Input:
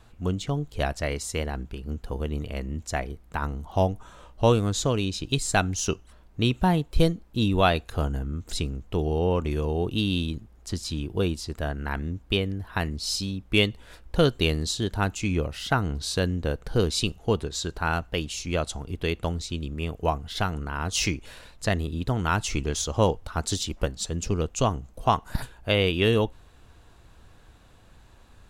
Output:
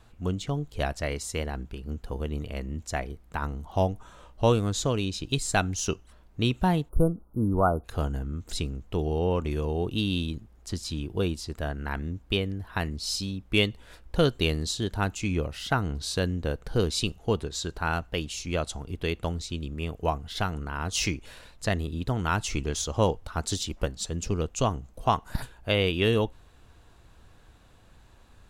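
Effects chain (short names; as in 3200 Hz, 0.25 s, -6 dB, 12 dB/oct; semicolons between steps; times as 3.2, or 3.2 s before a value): spectral delete 6.89–7.84, 1500–9100 Hz; gain -2 dB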